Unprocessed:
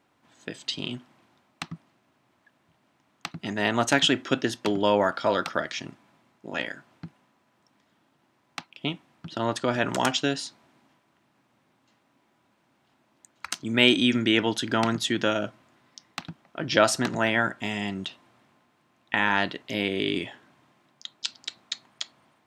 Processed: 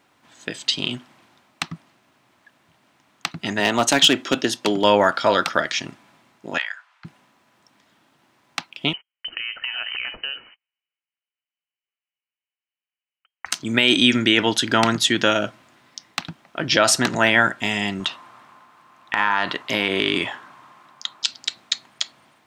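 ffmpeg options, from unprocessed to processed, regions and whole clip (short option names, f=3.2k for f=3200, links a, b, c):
-filter_complex "[0:a]asettb=1/sr,asplit=3[a][b][c];[a]atrim=end=3.604[d];[b]atrim=start=3.6:end=4.84,asetpts=PTS-STARTPTS,afade=t=in:d=0.004:c=qsin,afade=t=out:st=1.236:d=0.004:c=qsin,highpass=140,equalizer=f=1.7k:w=1.6:g=-4.5,asoftclip=type=hard:threshold=-15dB[e];[c]atrim=start=4.836[f];[d][e]acrossfade=d=0.004:c1=hsin:c2=qsin[g];[g][f]acrossfade=d=0.004:c1=qsin:c2=hsin,asettb=1/sr,asplit=3[h][i][j];[h]atrim=end=6.584[k];[i]atrim=start=6.58:end=7.05,asetpts=PTS-STARTPTS,afade=t=in:d=0.004:c=qsin,afade=t=out:st=0.466:d=0.004:c=qsin,highpass=f=1k:w=0.5412,highpass=f=1k:w=1.3066,aemphasis=mode=reproduction:type=75kf[l];[j]atrim=start=7.046[m];[k][l]acrossfade=d=0.004:c1=hsin:c2=qsin[n];[n][m]acrossfade=d=0.004:c1=qsin:c2=hsin,asettb=1/sr,asplit=3[o][p][q];[o]atrim=end=8.934[r];[p]atrim=start=8.93:end=13.46,asetpts=PTS-STARTPTS,afade=t=in:d=0.004:c=qsin,afade=t=out:st=4.526:d=0.004:c=qsin,agate=range=-37dB:threshold=-54dB:ratio=16:release=100:detection=peak,acompressor=threshold=-34dB:ratio=5:attack=3.2:release=140:knee=1:detection=peak,lowpass=f=2.7k:t=q:w=0.5098,lowpass=f=2.7k:t=q:w=0.6013,lowpass=f=2.7k:t=q:w=0.9,lowpass=f=2.7k:t=q:w=2.563,afreqshift=-3200[s];[q]atrim=start=13.456[t];[r][s]acrossfade=d=0.004:c1=hsin:c2=qsin[u];[u][t]acrossfade=d=0.004:c1=qsin:c2=hsin,asettb=1/sr,asplit=3[v][w][x];[v]atrim=end=18.004[y];[w]atrim=start=18:end=21.25,asetpts=PTS-STARTPTS,afade=t=in:d=0.004:c=qsin,afade=t=out:st=3.246:d=0.004:c=qsin,highpass=56,equalizer=f=1.1k:t=o:w=1:g=13,acompressor=threshold=-21dB:ratio=12:attack=3.2:release=140:knee=1:detection=peak[z];[x]atrim=start=21.246[aa];[y][z]acrossfade=d=0.004:c1=hsin:c2=qsin[ab];[ab][aa]acrossfade=d=0.004:c1=qsin:c2=hsin,tiltshelf=f=970:g=-3,alimiter=level_in=8dB:limit=-1dB:release=50:level=0:latency=1,volume=-1dB"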